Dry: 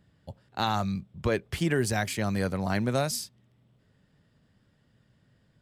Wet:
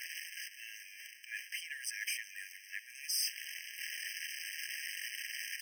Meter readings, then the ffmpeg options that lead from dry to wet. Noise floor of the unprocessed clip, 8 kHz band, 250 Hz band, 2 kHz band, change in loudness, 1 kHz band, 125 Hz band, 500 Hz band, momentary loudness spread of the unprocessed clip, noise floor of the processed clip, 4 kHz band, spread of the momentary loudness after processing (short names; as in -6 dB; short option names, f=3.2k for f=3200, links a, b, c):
-67 dBFS, -1.0 dB, under -40 dB, -3.0 dB, -11.0 dB, under -40 dB, under -40 dB, under -40 dB, 13 LU, -55 dBFS, -1.5 dB, 12 LU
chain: -af "aeval=exprs='val(0)+0.5*0.0282*sgn(val(0))':c=same,areverse,acompressor=threshold=-34dB:ratio=6,areverse,afftfilt=real='re*eq(mod(floor(b*sr/1024/1600),2),1)':imag='im*eq(mod(floor(b*sr/1024/1600),2),1)':win_size=1024:overlap=0.75,volume=4dB"